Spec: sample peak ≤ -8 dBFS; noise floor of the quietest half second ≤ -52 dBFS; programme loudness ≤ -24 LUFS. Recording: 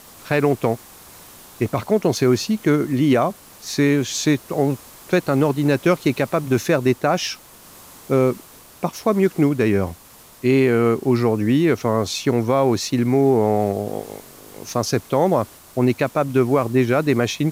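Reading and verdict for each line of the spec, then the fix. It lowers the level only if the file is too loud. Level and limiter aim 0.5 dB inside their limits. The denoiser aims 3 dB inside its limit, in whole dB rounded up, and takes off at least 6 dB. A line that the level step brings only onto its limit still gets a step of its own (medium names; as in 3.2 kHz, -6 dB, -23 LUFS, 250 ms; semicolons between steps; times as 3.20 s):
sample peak -6.0 dBFS: fail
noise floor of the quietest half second -45 dBFS: fail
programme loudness -19.5 LUFS: fail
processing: noise reduction 6 dB, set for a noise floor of -45 dBFS; trim -5 dB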